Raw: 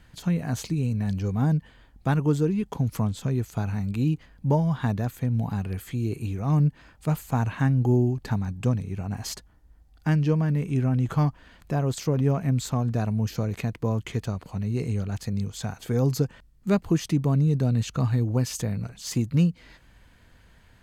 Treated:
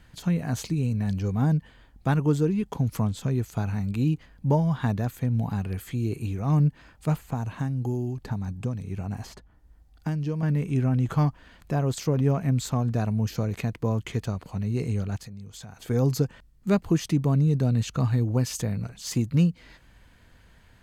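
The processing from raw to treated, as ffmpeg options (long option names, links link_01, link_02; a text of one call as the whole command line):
ffmpeg -i in.wav -filter_complex "[0:a]asettb=1/sr,asplit=3[link_01][link_02][link_03];[link_01]atrim=end=7.154[link_04];[link_02]atrim=start=7.15:end=10.43,asetpts=PTS-STARTPTS,afade=type=in:duration=0.004:curve=qsin,afade=type=out:start_time=3.276:duration=0.004:curve=qsin,acrossover=split=1200|3300[link_05][link_06][link_07];[link_05]acompressor=threshold=-26dB:ratio=4[link_08];[link_06]acompressor=threshold=-53dB:ratio=4[link_09];[link_07]acompressor=threshold=-52dB:ratio=4[link_10];[link_08][link_09][link_10]amix=inputs=3:normalize=0[link_11];[link_03]atrim=start=10.426[link_12];[link_04][link_11]acrossfade=duration=0.004:curve1=hsin:curve2=qsin[link_13];[link_13][link_12]acrossfade=duration=0.004:curve1=qsin:curve2=hsin,asettb=1/sr,asplit=3[link_14][link_15][link_16];[link_14]atrim=end=15.164[link_17];[link_15]atrim=start=15.16:end=15.9,asetpts=PTS-STARTPTS,afade=type=in:duration=0.004:curve=qsin,afade=type=out:start_time=0.736:duration=0.004:curve=qsin,acompressor=threshold=-40dB:ratio=4:attack=3.2:release=140:knee=1:detection=peak[link_18];[link_16]atrim=start=15.896[link_19];[link_17][link_18]acrossfade=duration=0.004:curve1=hsin:curve2=qsin[link_20];[link_20][link_19]acrossfade=duration=0.004:curve1=qsin:curve2=hsin" out.wav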